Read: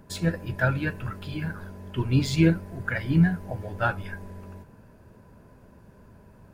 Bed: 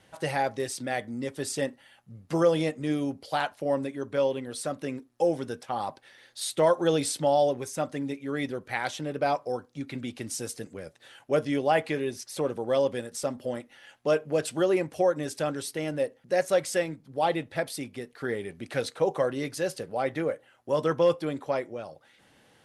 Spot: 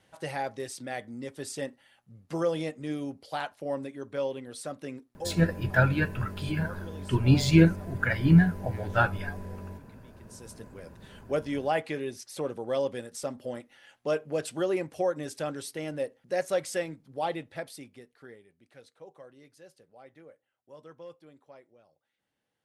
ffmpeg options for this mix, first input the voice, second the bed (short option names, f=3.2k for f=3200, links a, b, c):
-filter_complex "[0:a]adelay=5150,volume=1.5dB[a];[1:a]volume=12.5dB,afade=t=out:st=5.03:d=0.33:silence=0.149624,afade=t=in:st=10.24:d=0.7:silence=0.125893,afade=t=out:st=17.05:d=1.4:silence=0.105925[b];[a][b]amix=inputs=2:normalize=0"